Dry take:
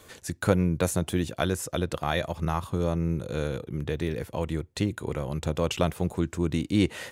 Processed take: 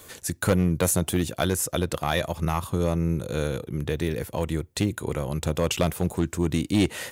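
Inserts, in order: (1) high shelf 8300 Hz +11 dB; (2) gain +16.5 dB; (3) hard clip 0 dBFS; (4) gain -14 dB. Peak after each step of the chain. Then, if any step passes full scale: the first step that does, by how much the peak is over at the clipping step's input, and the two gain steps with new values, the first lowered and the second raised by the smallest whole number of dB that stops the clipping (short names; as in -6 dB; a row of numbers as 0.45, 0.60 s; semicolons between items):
-9.0, +7.5, 0.0, -14.0 dBFS; step 2, 7.5 dB; step 2 +8.5 dB, step 4 -6 dB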